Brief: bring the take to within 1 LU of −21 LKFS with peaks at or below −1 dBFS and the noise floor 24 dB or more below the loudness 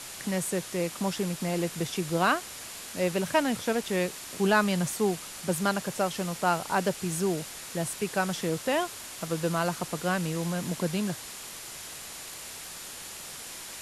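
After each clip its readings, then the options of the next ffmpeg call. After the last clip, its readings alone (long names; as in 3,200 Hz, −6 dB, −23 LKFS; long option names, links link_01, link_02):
interfering tone 7,100 Hz; level of the tone −52 dBFS; background noise floor −42 dBFS; target noise floor −54 dBFS; integrated loudness −30.0 LKFS; sample peak −10.0 dBFS; target loudness −21.0 LKFS
→ -af "bandreject=frequency=7100:width=30"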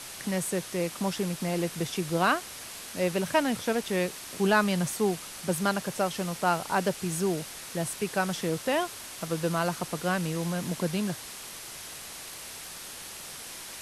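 interfering tone none found; background noise floor −42 dBFS; target noise floor −54 dBFS
→ -af "afftdn=noise_reduction=12:noise_floor=-42"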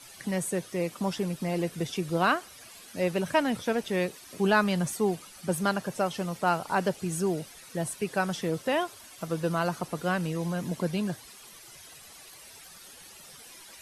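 background noise floor −50 dBFS; target noise floor −54 dBFS
→ -af "afftdn=noise_reduction=6:noise_floor=-50"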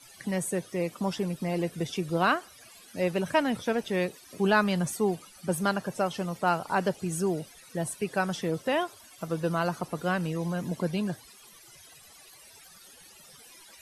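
background noise floor −53 dBFS; target noise floor −54 dBFS
→ -af "afftdn=noise_reduction=6:noise_floor=-53"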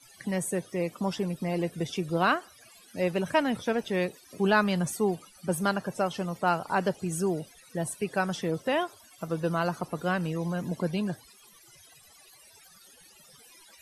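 background noise floor −56 dBFS; integrated loudness −29.5 LKFS; sample peak −10.0 dBFS; target loudness −21.0 LKFS
→ -af "volume=8.5dB"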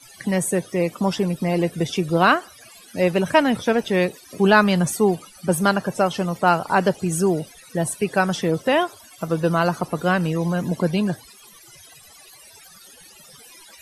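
integrated loudness −21.0 LKFS; sample peak −1.5 dBFS; background noise floor −47 dBFS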